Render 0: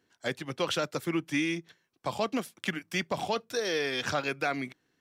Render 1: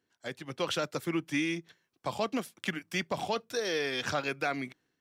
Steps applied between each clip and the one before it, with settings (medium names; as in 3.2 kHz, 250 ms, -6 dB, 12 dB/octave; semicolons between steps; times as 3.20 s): level rider gain up to 6 dB; trim -7.5 dB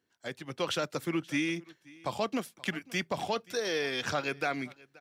delay 529 ms -23 dB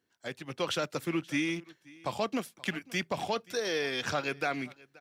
rattle on loud lows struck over -42 dBFS, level -39 dBFS